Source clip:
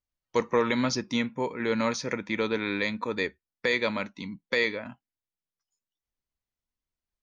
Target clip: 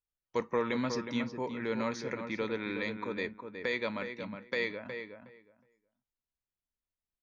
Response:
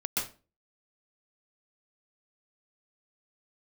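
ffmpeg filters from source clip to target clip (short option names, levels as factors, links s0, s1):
-filter_complex "[0:a]lowpass=f=3800:p=1,asplit=2[s0][s1];[s1]adelay=365,lowpass=f=2300:p=1,volume=0.447,asplit=2[s2][s3];[s3]adelay=365,lowpass=f=2300:p=1,volume=0.17,asplit=2[s4][s5];[s5]adelay=365,lowpass=f=2300:p=1,volume=0.17[s6];[s0][s2][s4][s6]amix=inputs=4:normalize=0,volume=0.473"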